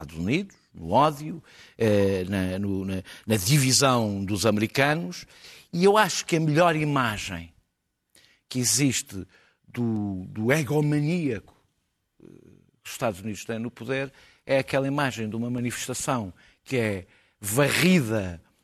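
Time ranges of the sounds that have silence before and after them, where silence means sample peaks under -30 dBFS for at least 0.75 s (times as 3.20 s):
8.52–11.39 s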